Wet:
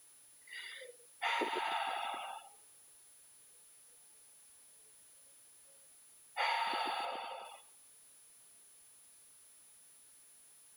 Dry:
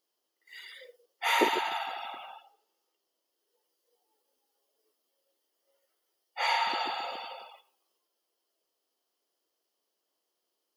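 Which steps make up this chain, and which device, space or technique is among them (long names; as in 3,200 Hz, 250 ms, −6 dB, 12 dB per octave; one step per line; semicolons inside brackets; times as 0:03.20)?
medium wave at night (band-pass filter 120–4,500 Hz; downward compressor, threshold −30 dBFS, peak gain reduction 11 dB; amplitude tremolo 0.36 Hz, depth 40%; steady tone 10,000 Hz −62 dBFS; white noise bed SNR 23 dB)
0:07.05–0:07.45: high-shelf EQ 4,000 Hz −7.5 dB
level +2 dB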